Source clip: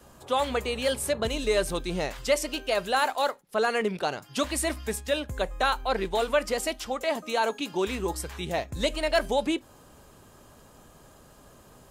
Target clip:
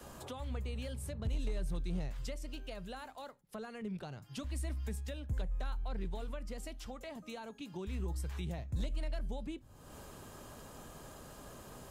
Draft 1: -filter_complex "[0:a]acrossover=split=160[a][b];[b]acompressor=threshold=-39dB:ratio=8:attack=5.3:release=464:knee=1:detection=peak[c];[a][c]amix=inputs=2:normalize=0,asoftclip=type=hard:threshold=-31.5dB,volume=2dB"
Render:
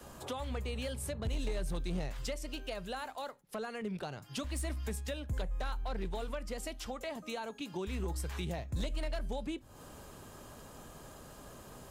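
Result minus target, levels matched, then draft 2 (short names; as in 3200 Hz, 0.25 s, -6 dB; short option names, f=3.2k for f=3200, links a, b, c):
compressor: peak gain reduction -6.5 dB
-filter_complex "[0:a]acrossover=split=160[a][b];[b]acompressor=threshold=-46.5dB:ratio=8:attack=5.3:release=464:knee=1:detection=peak[c];[a][c]amix=inputs=2:normalize=0,asoftclip=type=hard:threshold=-31.5dB,volume=2dB"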